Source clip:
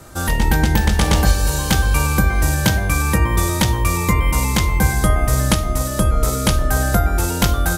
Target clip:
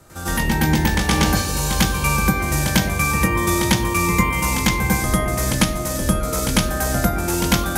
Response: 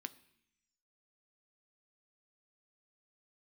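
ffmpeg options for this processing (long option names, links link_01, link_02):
-filter_complex "[0:a]asplit=2[link_01][link_02];[1:a]atrim=start_sample=2205,adelay=98[link_03];[link_02][link_03]afir=irnorm=-1:irlink=0,volume=12.5dB[link_04];[link_01][link_04]amix=inputs=2:normalize=0,volume=-8.5dB"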